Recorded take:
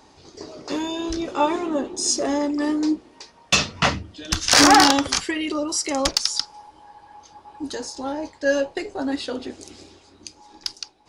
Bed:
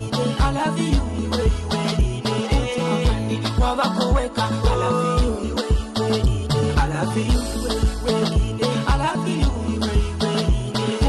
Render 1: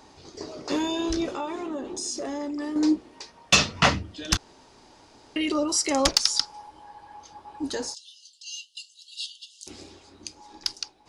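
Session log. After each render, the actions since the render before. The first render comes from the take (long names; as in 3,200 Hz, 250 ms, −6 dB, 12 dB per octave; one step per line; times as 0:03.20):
0:01.30–0:02.76: downward compressor 4 to 1, threshold −30 dBFS
0:04.37–0:05.36: fill with room tone
0:07.94–0:09.67: linear-phase brick-wall high-pass 2,700 Hz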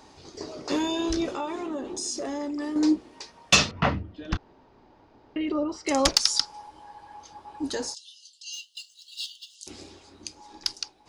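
0:03.71–0:05.87: head-to-tape spacing loss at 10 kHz 37 dB
0:08.53–0:09.55: running median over 3 samples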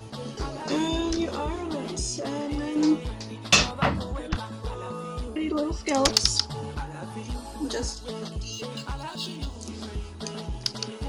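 mix in bed −15 dB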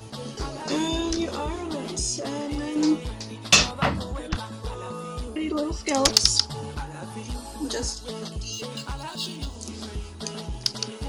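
high-shelf EQ 4,600 Hz +6 dB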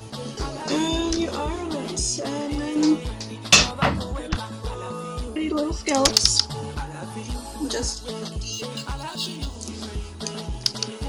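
level +2.5 dB
brickwall limiter −1 dBFS, peak gain reduction 2.5 dB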